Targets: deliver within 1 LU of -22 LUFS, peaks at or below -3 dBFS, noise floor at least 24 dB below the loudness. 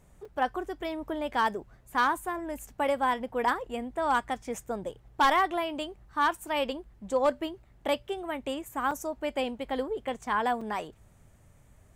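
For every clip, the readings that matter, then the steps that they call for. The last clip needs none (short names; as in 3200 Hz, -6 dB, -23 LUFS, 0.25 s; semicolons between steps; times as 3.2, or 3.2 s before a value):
clipped 0.3%; flat tops at -17.5 dBFS; dropouts 3; longest dropout 4.5 ms; loudness -30.5 LUFS; peak -17.5 dBFS; loudness target -22.0 LUFS
-> clip repair -17.5 dBFS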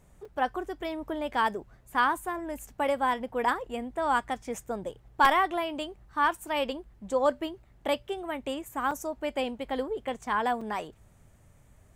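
clipped 0.0%; dropouts 3; longest dropout 4.5 ms
-> interpolate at 0.25/8.91/10.61, 4.5 ms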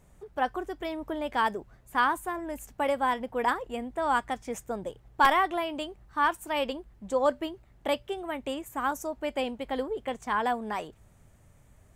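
dropouts 0; loudness -30.0 LUFS; peak -8.5 dBFS; loudness target -22.0 LUFS
-> gain +8 dB; limiter -3 dBFS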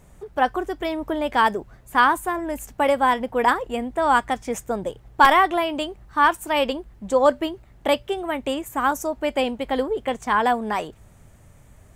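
loudness -22.0 LUFS; peak -3.0 dBFS; noise floor -51 dBFS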